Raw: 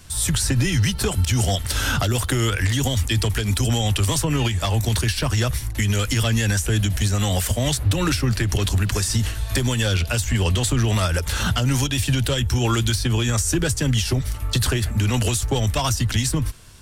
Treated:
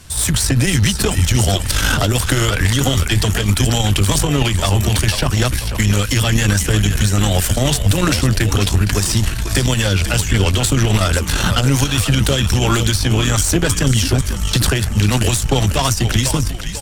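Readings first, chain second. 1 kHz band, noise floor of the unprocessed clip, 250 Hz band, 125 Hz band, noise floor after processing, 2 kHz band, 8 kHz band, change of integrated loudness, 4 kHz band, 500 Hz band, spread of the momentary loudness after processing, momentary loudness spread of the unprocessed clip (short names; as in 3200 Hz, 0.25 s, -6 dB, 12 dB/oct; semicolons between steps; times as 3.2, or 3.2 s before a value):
+6.0 dB, -29 dBFS, +5.5 dB, +5.0 dB, -22 dBFS, +6.0 dB, +5.5 dB, +5.5 dB, +6.0 dB, +5.5 dB, 2 LU, 2 LU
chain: frequency-shifting echo 0.493 s, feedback 44%, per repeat -71 Hz, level -8.5 dB; tube stage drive 13 dB, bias 0.75; gain +9 dB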